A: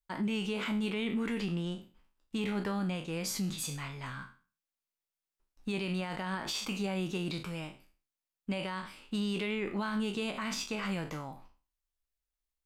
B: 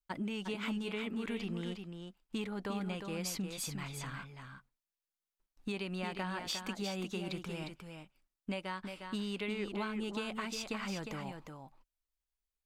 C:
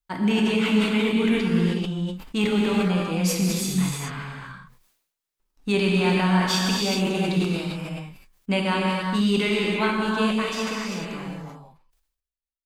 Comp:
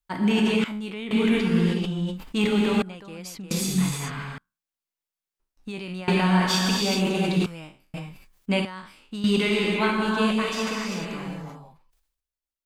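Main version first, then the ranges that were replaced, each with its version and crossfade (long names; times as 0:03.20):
C
0:00.64–0:01.11: punch in from A
0:02.82–0:03.51: punch in from B
0:04.38–0:06.08: punch in from A
0:07.46–0:07.94: punch in from A
0:08.65–0:09.24: punch in from A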